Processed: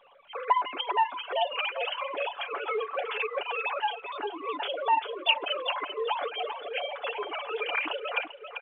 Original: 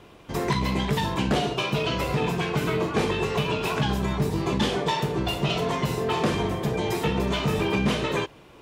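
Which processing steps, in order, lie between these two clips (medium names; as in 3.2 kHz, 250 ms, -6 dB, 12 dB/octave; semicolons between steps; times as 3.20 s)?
formants replaced by sine waves; high-pass 650 Hz 12 dB/octave; peaking EQ 1.9 kHz -8 dB 0.37 oct; feedback delay 392 ms, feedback 32%, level -7.5 dB; reverb removal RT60 1.8 s; comb 7 ms, depth 43%; in parallel at -1.5 dB: volume shaper 105 bpm, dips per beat 1, -16 dB, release 147 ms; on the sum: crackle 290 per s -48 dBFS; trim -7.5 dB; µ-law 64 kbps 8 kHz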